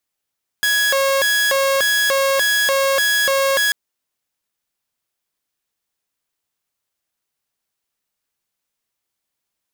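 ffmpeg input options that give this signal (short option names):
-f lavfi -i "aevalsrc='0.251*(2*mod((1107.5*t+562.5/1.7*(0.5-abs(mod(1.7*t,1)-0.5))),1)-1)':d=3.09:s=44100"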